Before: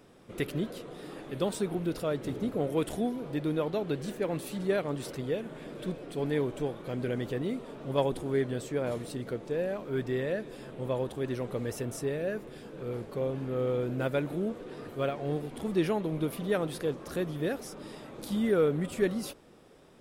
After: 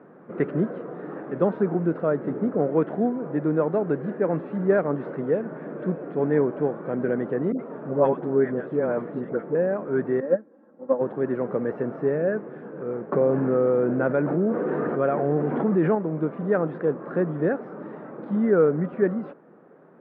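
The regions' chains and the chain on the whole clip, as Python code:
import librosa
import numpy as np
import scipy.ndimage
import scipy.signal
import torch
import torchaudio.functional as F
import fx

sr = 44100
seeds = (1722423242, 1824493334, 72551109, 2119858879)

y = fx.chain(x, sr, fx.highpass(hz=45.0, slope=12),
    fx.dispersion(late='highs', ms=78.0, hz=760.0), at=(7.52, 9.55))
y = fx.chain(y, sr, fx.peak_eq(hz=2600.0, db=-9.0, octaves=1.2),
    fx.comb(ms=3.7, depth=1.0),
    fx.upward_expand(threshold_db=-37.0, expansion=2.5), at=(10.2, 11.01))
y = fx.chain(y, sr, fx.lowpass(hz=7900.0, slope=12),
    fx.env_flatten(amount_pct=70), at=(13.12, 15.95))
y = fx.rider(y, sr, range_db=3, speed_s=2.0)
y = scipy.signal.sosfilt(scipy.signal.ellip(3, 1.0, 60, [160.0, 1600.0], 'bandpass', fs=sr, output='sos'), y)
y = y * 10.0 ** (6.5 / 20.0)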